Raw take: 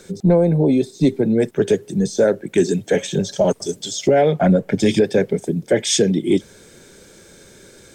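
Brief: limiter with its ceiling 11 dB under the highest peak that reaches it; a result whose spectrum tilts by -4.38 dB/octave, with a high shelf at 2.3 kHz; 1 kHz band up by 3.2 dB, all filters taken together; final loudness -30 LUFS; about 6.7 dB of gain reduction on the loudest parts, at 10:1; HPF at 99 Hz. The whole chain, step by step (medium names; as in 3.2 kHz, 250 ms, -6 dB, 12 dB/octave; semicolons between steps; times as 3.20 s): high-pass 99 Hz; peaking EQ 1 kHz +4.5 dB; treble shelf 2.3 kHz +6 dB; compression 10:1, threshold -16 dBFS; trim -3.5 dB; peak limiter -21.5 dBFS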